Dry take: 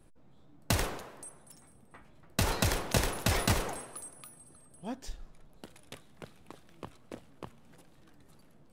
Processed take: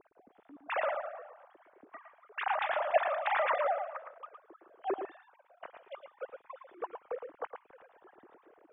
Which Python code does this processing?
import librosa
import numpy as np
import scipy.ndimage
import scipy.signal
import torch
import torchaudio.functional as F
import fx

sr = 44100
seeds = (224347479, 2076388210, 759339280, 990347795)

p1 = fx.sine_speech(x, sr)
p2 = scipy.signal.sosfilt(scipy.signal.butter(2, 1600.0, 'lowpass', fs=sr, output='sos'), p1)
y = p2 + fx.echo_single(p2, sr, ms=112, db=-7.0, dry=0)